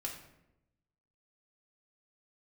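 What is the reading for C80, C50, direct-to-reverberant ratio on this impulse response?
9.0 dB, 6.0 dB, −1.0 dB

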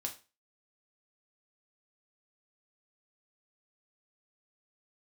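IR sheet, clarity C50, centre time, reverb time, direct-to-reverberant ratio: 12.5 dB, 12 ms, 0.30 s, 2.0 dB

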